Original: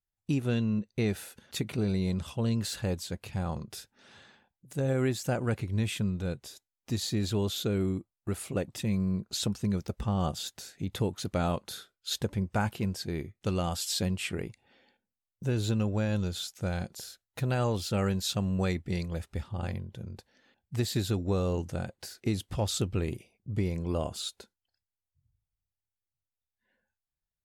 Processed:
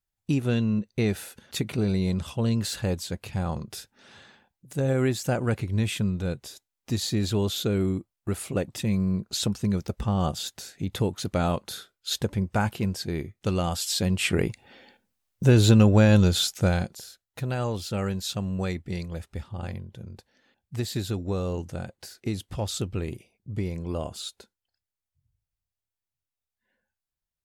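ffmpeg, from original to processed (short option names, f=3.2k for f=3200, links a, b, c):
-af "volume=12dB,afade=t=in:st=14.03:d=0.44:silence=0.398107,afade=t=out:st=16.52:d=0.48:silence=0.251189"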